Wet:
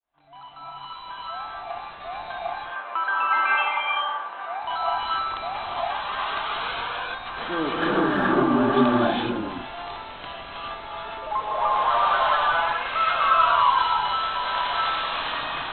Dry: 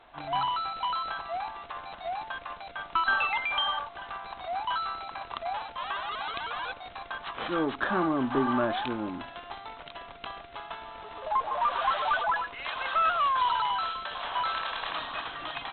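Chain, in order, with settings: opening faded in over 2.63 s; 2.32–4.62 BPF 390–2200 Hz; reverb, pre-delay 3 ms, DRR -6 dB

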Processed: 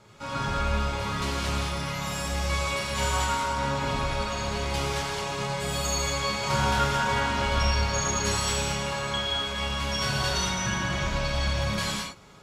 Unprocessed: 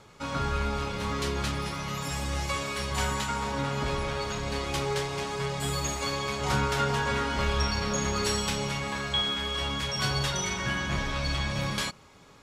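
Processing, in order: non-linear reverb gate 0.25 s flat, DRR -5.5 dB; gain -4 dB

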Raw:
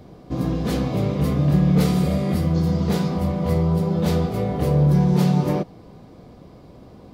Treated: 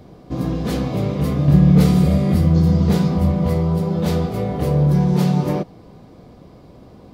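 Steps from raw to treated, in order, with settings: 1.48–3.48 low shelf 200 Hz +7.5 dB; gain +1 dB

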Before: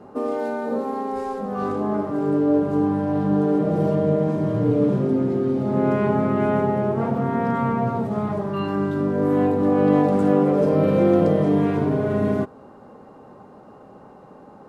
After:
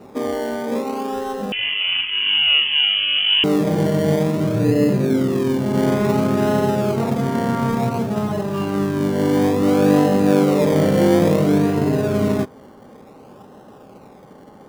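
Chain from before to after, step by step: in parallel at -7.5 dB: decimation with a swept rate 27×, swing 60% 0.57 Hz; 1.52–3.44 on the sum: inverted band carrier 3200 Hz

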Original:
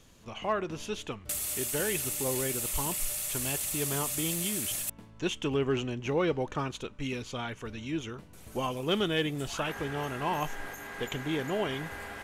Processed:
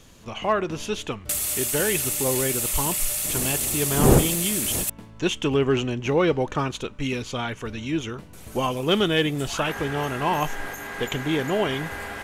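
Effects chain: 3.23–4.83 wind noise 360 Hz -32 dBFS; gain +7.5 dB

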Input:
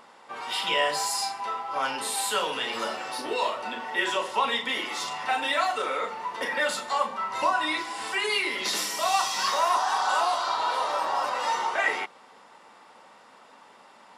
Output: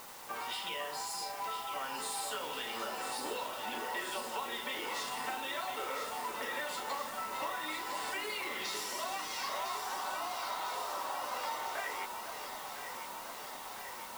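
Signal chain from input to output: compressor 10:1, threshold -37 dBFS, peak gain reduction 18 dB; added noise white -52 dBFS; echo with dull and thin repeats by turns 0.502 s, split 1500 Hz, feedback 85%, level -6 dB

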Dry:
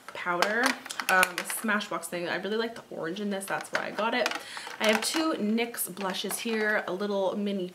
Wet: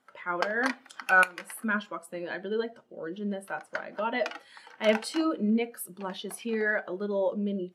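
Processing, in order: spectral expander 1.5:1; gain -4.5 dB

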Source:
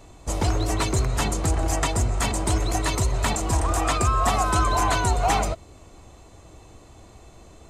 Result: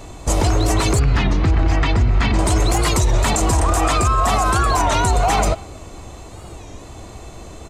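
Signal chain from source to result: 1–2.39 EQ curve 270 Hz 0 dB, 580 Hz -9 dB, 2100 Hz 0 dB, 4800 Hz -7 dB, 8600 Hz -28 dB; speakerphone echo 0.23 s, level -28 dB; maximiser +18.5 dB; record warp 33 1/3 rpm, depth 160 cents; gain -7 dB

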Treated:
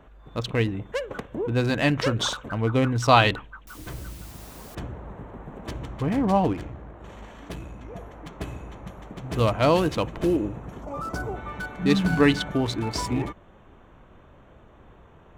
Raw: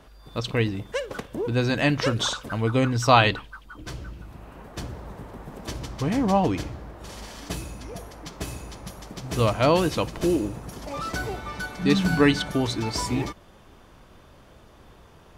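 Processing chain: Wiener smoothing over 9 samples; 3.67–4.75 requantised 8-bit, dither triangular; 6.53–7.96 tube stage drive 28 dB, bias 0.45; 10.82–11.36 spectral gain 1500–4500 Hz -9 dB

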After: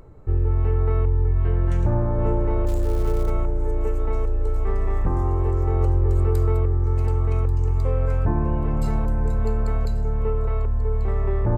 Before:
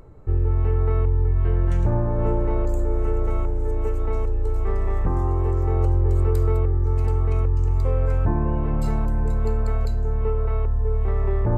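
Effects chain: on a send: feedback echo 1.137 s, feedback 36%, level -16 dB; 2.66–3.29 on the sum: crackle 350/s -32 dBFS

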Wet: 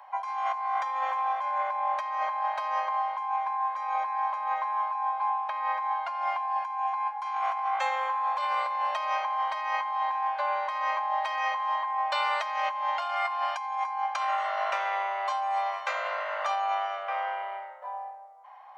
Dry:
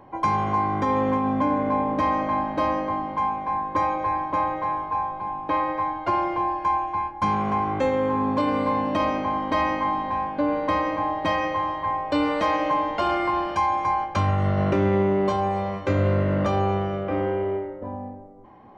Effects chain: steep high-pass 690 Hz 48 dB/oct; negative-ratio compressor -29 dBFS, ratio -1

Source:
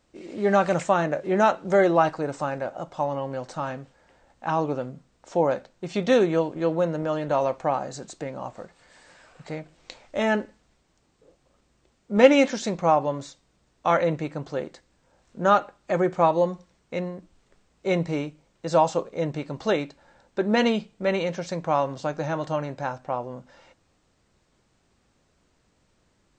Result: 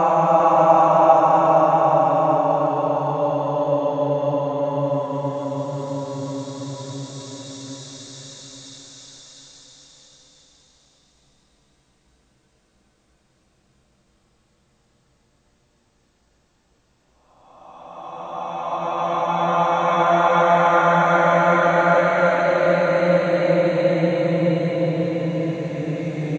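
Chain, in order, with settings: vibrato 1.8 Hz 65 cents; Paulstretch 20×, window 0.25 s, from 12.89; bouncing-ball echo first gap 0.4 s, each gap 0.9×, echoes 5; gain +2 dB

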